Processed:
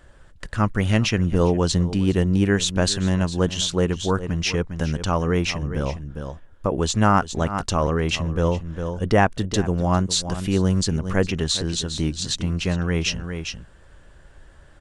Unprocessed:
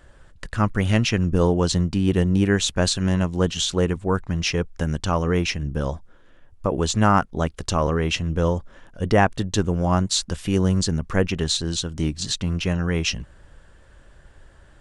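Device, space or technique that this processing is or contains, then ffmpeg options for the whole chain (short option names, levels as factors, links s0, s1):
ducked delay: -filter_complex "[0:a]asplit=3[s0][s1][s2];[s1]adelay=405,volume=0.447[s3];[s2]apad=whole_len=670854[s4];[s3][s4]sidechaincompress=threshold=0.0282:ratio=8:attack=33:release=111[s5];[s0][s5]amix=inputs=2:normalize=0"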